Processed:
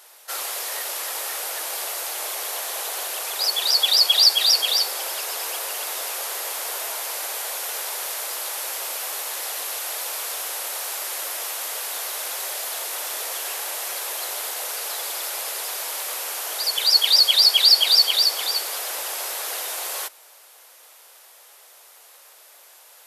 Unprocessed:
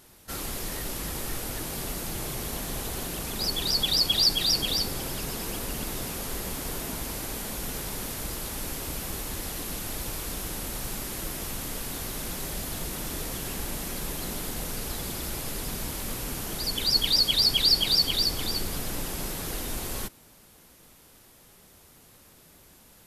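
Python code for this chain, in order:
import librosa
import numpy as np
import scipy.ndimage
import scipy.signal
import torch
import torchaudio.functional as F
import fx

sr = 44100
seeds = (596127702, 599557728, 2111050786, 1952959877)

y = scipy.signal.sosfilt(scipy.signal.cheby2(4, 50, 210.0, 'highpass', fs=sr, output='sos'), x)
y = y * librosa.db_to_amplitude(7.0)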